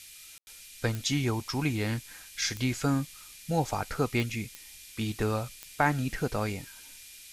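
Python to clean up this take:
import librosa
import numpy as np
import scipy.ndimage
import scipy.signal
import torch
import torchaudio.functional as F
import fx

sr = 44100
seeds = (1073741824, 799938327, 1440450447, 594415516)

y = fx.fix_declick_ar(x, sr, threshold=10.0)
y = fx.notch(y, sr, hz=2400.0, q=30.0)
y = fx.fix_ambience(y, sr, seeds[0], print_start_s=6.8, print_end_s=7.3, start_s=0.38, end_s=0.47)
y = fx.noise_reduce(y, sr, print_start_s=6.8, print_end_s=7.3, reduce_db=26.0)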